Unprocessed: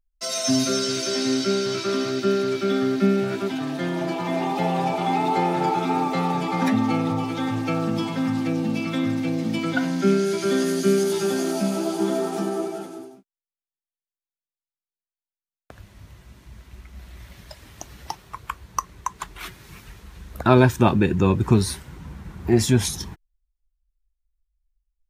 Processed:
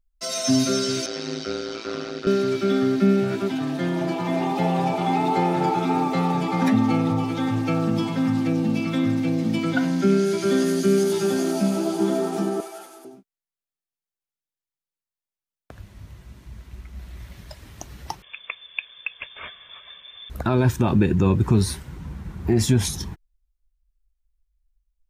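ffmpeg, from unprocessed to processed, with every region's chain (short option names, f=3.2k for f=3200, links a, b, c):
-filter_complex "[0:a]asettb=1/sr,asplit=3[a][b][c];[a]atrim=end=1.064[d];[b]atrim=start=1.06:end=2.27,asetpts=PTS-STARTPTS,afade=t=in:d=0.004:c=qsin,afade=t=out:st=1.206:d=0.004:c=qsin,highpass=370,lowpass=5.5k,tremolo=f=110:d=0.974[e];[c]atrim=start=2.266[f];[d][e]acrossfade=d=0.004:c1=hsin:c2=qsin[g];[g][f]acrossfade=d=0.004:c1=qsin:c2=hsin,asettb=1/sr,asplit=3[h][i][j];[h]atrim=end=12.604[k];[i]atrim=start=12.6:end=13.05,asetpts=PTS-STARTPTS,afade=t=in:d=0.004:c=qsin,afade=t=out:st=0.446:d=0.004:c=qsin,highpass=800,acompressor=mode=upward:threshold=-42dB:ratio=2.5:attack=3.2:release=140:knee=2.83:detection=peak,equalizer=f=12k:t=o:w=0.8:g=7.5[l];[j]atrim=start=13.046[m];[k][l]acrossfade=d=0.004:c1=hsin:c2=qsin[n];[n][m]acrossfade=d=0.004:c1=qsin:c2=hsin,asettb=1/sr,asplit=3[o][p][q];[o]atrim=end=18.224[r];[p]atrim=start=18.22:end=20.3,asetpts=PTS-STARTPTS,afade=t=in:d=0.004:c=qsin,afade=t=out:st=2.076:d=0.004:c=qsin,lowpass=f=3.1k:t=q:w=0.5098,lowpass=f=3.1k:t=q:w=0.6013,lowpass=f=3.1k:t=q:w=0.9,lowpass=f=3.1k:t=q:w=2.563,afreqshift=-3600,aecho=1:1:1.8:0.46,atrim=end_sample=91728[s];[q]atrim=start=20.296[t];[r][s]acrossfade=d=0.004:c1=hsin:c2=qsin[u];[u][t]acrossfade=d=0.004:c1=qsin:c2=hsin,lowshelf=f=310:g=5,alimiter=level_in=7dB:limit=-1dB:release=50:level=0:latency=1,volume=-8dB"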